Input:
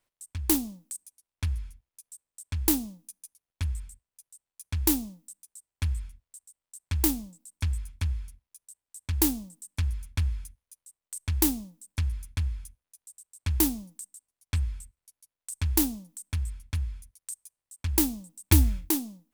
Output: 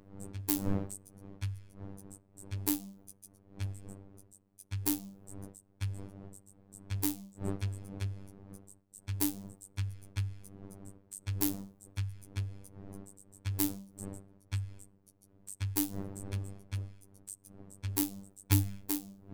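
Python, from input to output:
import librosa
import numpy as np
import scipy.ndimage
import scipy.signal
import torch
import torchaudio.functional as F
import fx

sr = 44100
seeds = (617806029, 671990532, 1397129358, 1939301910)

y = fx.dmg_wind(x, sr, seeds[0], corner_hz=250.0, level_db=-39.0)
y = fx.robotise(y, sr, hz=98.3)
y = F.gain(torch.from_numpy(y), -5.5).numpy()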